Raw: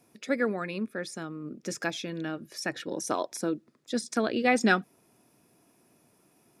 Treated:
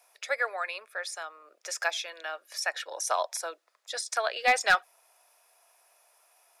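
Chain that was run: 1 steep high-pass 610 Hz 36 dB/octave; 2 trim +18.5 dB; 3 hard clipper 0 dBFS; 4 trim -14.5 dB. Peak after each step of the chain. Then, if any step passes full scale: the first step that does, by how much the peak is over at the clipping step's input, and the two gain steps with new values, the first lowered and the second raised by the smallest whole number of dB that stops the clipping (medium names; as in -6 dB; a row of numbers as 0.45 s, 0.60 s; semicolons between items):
-12.0 dBFS, +6.5 dBFS, 0.0 dBFS, -14.5 dBFS; step 2, 6.5 dB; step 2 +11.5 dB, step 4 -7.5 dB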